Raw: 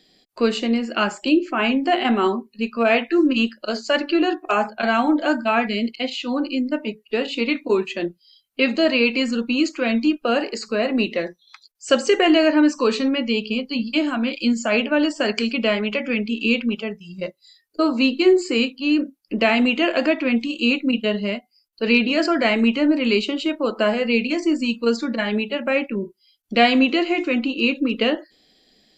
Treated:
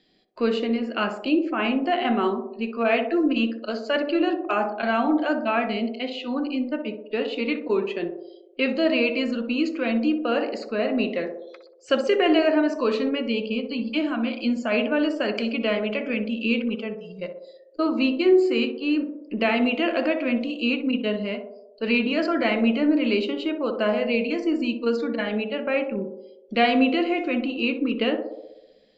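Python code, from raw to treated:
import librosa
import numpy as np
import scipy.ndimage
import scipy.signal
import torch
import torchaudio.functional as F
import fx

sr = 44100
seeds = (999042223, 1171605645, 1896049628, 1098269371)

p1 = scipy.signal.sosfilt(scipy.signal.butter(2, 3800.0, 'lowpass', fs=sr, output='sos'), x)
p2 = p1 + fx.echo_banded(p1, sr, ms=62, feedback_pct=72, hz=490.0, wet_db=-5.5, dry=0)
y = F.gain(torch.from_numpy(p2), -4.5).numpy()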